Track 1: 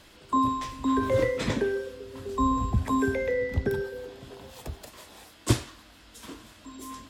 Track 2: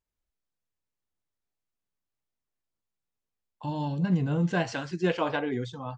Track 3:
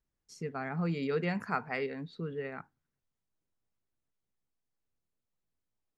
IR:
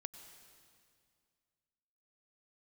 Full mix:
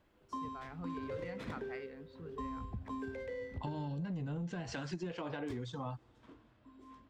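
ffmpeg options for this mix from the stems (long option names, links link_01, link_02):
-filter_complex "[0:a]adynamicsmooth=sensitivity=4.5:basefreq=1800,volume=-16.5dB,asplit=2[link_01][link_02];[link_02]volume=-5dB[link_03];[1:a]alimiter=limit=-19.5dB:level=0:latency=1:release=26,acrossover=split=320[link_04][link_05];[link_05]acompressor=threshold=-35dB:ratio=6[link_06];[link_04][link_06]amix=inputs=2:normalize=0,asoftclip=type=tanh:threshold=-22.5dB,volume=2.5dB,asplit=2[link_07][link_08];[link_08]volume=-20dB[link_09];[2:a]volume=-12.5dB[link_10];[3:a]atrim=start_sample=2205[link_11];[link_03][link_09]amix=inputs=2:normalize=0[link_12];[link_12][link_11]afir=irnorm=-1:irlink=0[link_13];[link_01][link_07][link_10][link_13]amix=inputs=4:normalize=0,acompressor=threshold=-37dB:ratio=10"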